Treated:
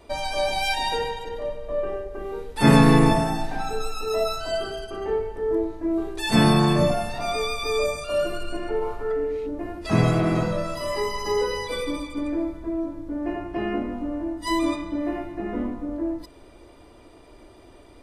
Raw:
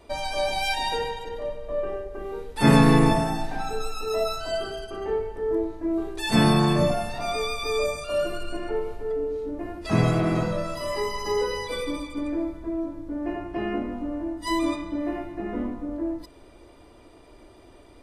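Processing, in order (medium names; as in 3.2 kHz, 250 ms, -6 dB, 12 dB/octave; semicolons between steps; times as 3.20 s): 8.81–9.46 s: peaking EQ 880 Hz -> 2.6 kHz +12.5 dB 0.94 oct; trim +1.5 dB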